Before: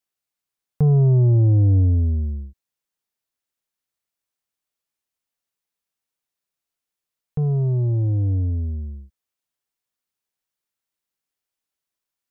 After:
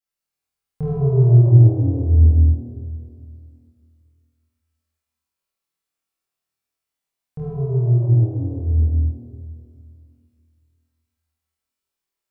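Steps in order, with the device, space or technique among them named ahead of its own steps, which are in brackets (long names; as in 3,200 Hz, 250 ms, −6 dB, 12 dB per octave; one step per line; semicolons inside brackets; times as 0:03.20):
tunnel (flutter between parallel walls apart 4.3 metres, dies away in 0.75 s; convolution reverb RT60 2.4 s, pre-delay 18 ms, DRR −5 dB)
level −8 dB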